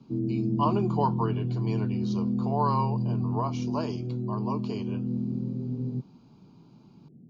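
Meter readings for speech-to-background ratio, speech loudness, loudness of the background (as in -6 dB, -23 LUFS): -3.0 dB, -33.0 LUFS, -30.0 LUFS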